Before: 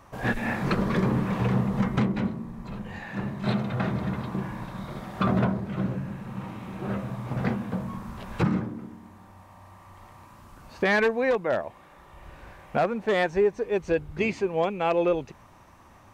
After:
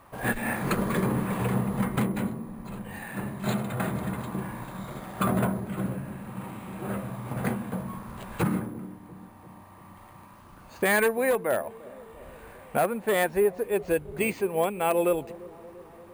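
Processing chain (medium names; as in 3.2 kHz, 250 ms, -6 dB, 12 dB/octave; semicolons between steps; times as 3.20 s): careless resampling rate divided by 4×, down filtered, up hold; bass shelf 180 Hz -5 dB; on a send: feedback echo behind a low-pass 344 ms, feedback 67%, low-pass 610 Hz, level -18 dB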